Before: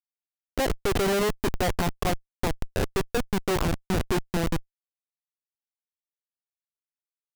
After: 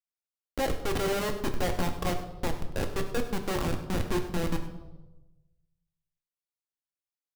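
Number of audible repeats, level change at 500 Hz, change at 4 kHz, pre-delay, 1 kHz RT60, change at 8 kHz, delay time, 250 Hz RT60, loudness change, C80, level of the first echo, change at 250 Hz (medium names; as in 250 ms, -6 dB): 1, -4.0 dB, -4.0 dB, 4 ms, 1.0 s, -4.5 dB, 100 ms, 1.2 s, -4.0 dB, 10.5 dB, -15.0 dB, -4.0 dB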